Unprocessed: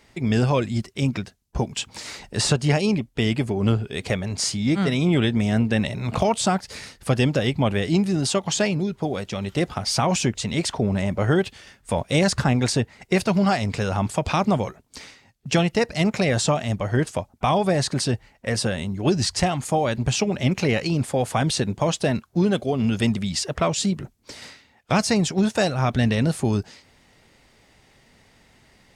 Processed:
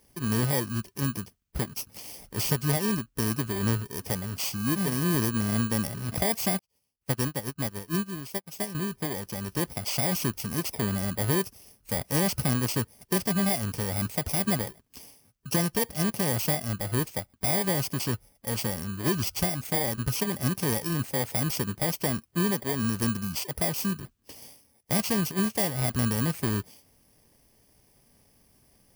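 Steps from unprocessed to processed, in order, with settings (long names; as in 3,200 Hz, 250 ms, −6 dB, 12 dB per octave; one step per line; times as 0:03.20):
samples in bit-reversed order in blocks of 32 samples
0:06.59–0:08.75: expander for the loud parts 2.5 to 1, over −38 dBFS
level −6 dB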